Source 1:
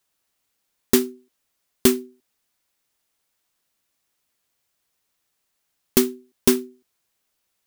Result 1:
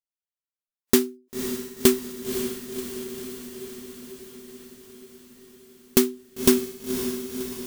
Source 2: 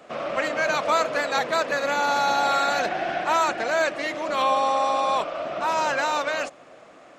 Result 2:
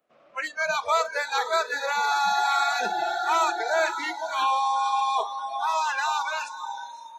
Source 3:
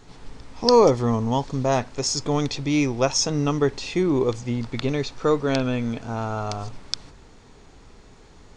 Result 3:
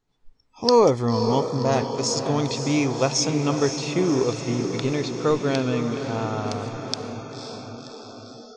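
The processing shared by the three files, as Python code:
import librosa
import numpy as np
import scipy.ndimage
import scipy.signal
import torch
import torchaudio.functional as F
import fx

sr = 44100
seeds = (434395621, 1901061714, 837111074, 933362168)

y = fx.echo_diffused(x, sr, ms=536, feedback_pct=67, wet_db=-8)
y = fx.noise_reduce_blind(y, sr, reduce_db=27)
y = y * librosa.db_to_amplitude(-1.0)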